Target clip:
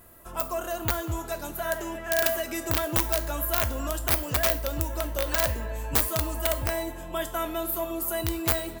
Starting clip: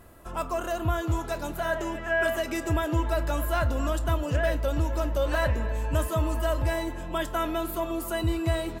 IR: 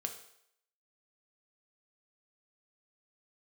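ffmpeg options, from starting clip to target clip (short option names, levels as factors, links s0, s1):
-filter_complex "[0:a]aeval=exprs='(mod(6.68*val(0)+1,2)-1)/6.68':c=same,asplit=2[s0][s1];[s1]aemphasis=mode=production:type=riaa[s2];[1:a]atrim=start_sample=2205,afade=t=out:st=0.38:d=0.01,atrim=end_sample=17199,asetrate=61740,aresample=44100[s3];[s2][s3]afir=irnorm=-1:irlink=0,volume=0.75[s4];[s0][s4]amix=inputs=2:normalize=0,volume=0.562"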